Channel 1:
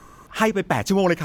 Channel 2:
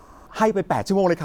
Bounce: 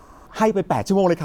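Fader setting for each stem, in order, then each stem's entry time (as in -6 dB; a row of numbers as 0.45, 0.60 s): -12.5, +0.5 dB; 0.00, 0.00 s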